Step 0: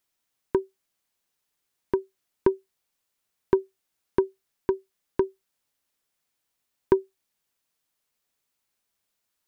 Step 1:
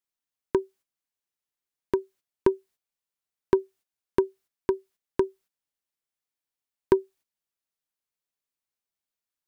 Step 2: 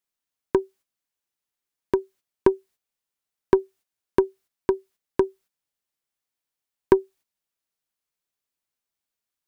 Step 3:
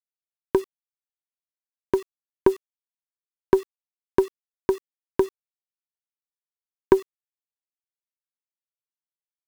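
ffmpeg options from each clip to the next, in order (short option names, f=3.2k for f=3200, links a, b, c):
-af "agate=range=-12dB:threshold=-53dB:ratio=16:detection=peak"
-af "aeval=exprs='0.501*(cos(1*acos(clip(val(0)/0.501,-1,1)))-cos(1*PI/2))+0.0282*(cos(3*acos(clip(val(0)/0.501,-1,1)))-cos(3*PI/2))+0.0141*(cos(4*acos(clip(val(0)/0.501,-1,1)))-cos(4*PI/2))':c=same,volume=4.5dB"
-af "acrusher=bits=6:mix=0:aa=0.000001"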